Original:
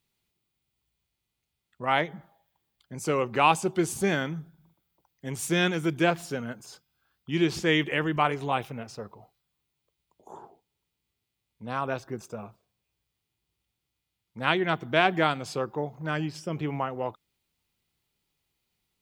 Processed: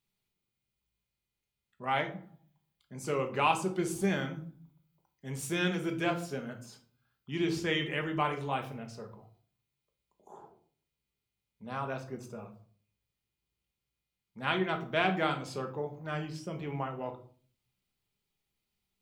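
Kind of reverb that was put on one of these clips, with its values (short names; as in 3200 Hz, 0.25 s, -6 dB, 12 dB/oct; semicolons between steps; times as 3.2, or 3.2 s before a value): shoebox room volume 390 m³, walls furnished, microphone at 1.3 m; gain -7.5 dB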